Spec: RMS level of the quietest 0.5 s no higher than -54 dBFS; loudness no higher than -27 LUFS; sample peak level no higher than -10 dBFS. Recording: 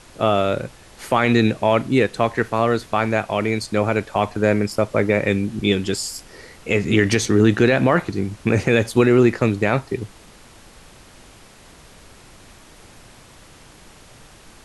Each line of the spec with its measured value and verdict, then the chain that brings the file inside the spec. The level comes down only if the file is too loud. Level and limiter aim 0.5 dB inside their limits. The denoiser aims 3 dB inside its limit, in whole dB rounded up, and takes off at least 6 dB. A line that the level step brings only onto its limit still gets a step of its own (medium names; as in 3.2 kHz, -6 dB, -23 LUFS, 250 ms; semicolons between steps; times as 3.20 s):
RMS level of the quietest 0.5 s -46 dBFS: fail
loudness -19.5 LUFS: fail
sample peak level -4.0 dBFS: fail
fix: noise reduction 6 dB, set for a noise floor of -46 dBFS; trim -8 dB